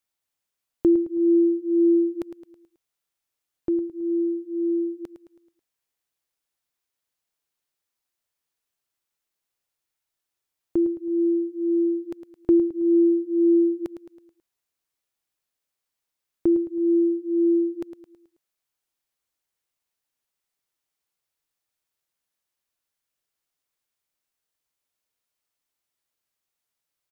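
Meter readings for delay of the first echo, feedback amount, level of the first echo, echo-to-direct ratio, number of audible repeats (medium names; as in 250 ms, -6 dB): 108 ms, 47%, -11.0 dB, -10.0 dB, 4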